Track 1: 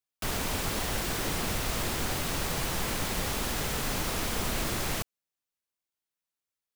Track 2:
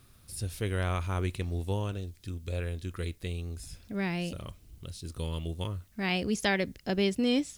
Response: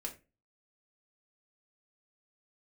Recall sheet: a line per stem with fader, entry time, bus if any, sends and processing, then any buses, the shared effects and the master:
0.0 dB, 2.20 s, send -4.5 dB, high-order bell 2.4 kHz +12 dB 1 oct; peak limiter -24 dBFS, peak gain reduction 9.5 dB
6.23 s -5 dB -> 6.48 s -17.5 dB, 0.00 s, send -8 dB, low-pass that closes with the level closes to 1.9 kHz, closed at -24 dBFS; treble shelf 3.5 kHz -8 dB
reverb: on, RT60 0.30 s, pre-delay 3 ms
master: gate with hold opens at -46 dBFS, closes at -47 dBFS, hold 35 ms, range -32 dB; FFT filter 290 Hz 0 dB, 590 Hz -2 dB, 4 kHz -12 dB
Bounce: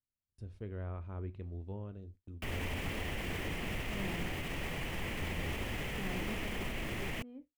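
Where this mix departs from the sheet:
stem 1: send off; stem 2 -5.0 dB -> -12.0 dB

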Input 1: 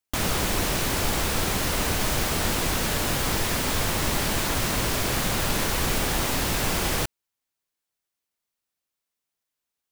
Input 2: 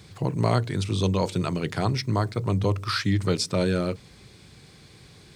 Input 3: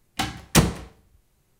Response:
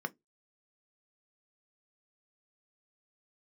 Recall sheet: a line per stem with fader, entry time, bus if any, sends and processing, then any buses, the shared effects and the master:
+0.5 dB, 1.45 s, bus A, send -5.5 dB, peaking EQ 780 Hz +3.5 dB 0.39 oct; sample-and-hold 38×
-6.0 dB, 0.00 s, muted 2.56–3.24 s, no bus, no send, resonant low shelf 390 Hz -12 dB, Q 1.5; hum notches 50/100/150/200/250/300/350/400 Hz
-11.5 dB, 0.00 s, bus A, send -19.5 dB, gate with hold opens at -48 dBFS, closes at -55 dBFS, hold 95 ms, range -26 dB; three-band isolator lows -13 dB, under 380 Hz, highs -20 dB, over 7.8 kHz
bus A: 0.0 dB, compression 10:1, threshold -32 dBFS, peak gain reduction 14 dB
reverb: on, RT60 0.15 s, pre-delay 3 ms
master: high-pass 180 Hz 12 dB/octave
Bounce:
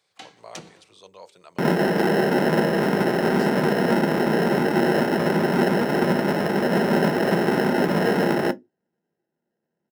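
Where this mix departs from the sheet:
stem 2 -6.0 dB -> -18.0 dB; reverb return +9.5 dB

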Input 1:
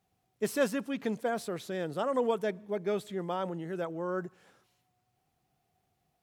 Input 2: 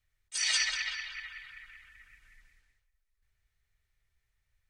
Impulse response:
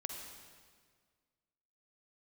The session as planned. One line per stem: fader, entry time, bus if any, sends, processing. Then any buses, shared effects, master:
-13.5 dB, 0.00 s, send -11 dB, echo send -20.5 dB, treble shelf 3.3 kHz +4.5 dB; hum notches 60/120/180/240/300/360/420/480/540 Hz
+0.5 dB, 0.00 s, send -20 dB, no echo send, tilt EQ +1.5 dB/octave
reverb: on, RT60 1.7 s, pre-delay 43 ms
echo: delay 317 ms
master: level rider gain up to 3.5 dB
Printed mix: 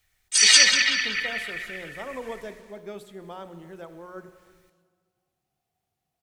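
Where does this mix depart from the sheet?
stem 1: send -11 dB -> -3 dB; stem 2 +0.5 dB -> +9.5 dB

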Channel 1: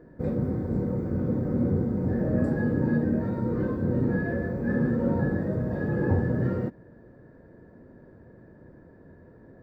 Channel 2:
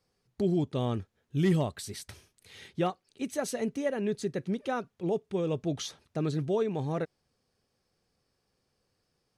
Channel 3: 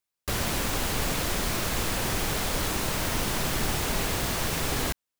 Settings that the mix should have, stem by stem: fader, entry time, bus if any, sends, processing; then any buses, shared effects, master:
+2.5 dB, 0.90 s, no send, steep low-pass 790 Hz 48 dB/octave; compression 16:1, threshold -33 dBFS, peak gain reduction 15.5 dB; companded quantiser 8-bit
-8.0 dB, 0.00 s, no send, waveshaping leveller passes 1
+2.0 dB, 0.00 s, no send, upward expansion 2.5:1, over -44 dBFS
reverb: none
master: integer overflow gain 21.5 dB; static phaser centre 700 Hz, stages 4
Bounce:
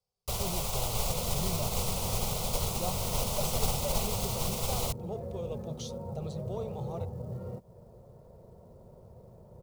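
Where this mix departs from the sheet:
stem 1: missing steep low-pass 790 Hz 48 dB/octave; master: missing integer overflow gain 21.5 dB

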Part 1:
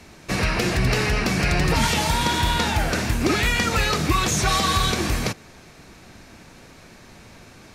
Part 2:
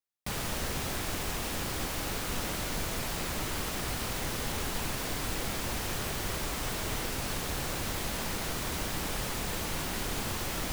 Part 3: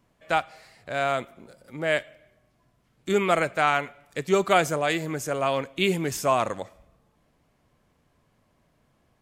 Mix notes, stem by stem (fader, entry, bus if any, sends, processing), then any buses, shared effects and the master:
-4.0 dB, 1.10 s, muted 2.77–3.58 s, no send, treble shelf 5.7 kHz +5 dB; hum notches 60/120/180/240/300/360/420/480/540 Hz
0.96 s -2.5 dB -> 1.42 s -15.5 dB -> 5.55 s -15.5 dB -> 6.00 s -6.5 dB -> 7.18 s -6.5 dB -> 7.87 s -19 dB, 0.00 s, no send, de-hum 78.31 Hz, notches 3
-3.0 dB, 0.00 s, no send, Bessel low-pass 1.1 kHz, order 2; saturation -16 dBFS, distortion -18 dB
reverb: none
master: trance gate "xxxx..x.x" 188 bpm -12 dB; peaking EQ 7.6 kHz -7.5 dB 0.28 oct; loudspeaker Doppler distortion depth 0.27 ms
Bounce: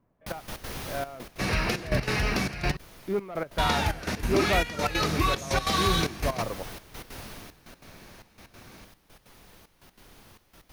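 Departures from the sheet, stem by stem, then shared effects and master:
stem 1: missing treble shelf 5.7 kHz +5 dB; master: missing loudspeaker Doppler distortion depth 0.27 ms

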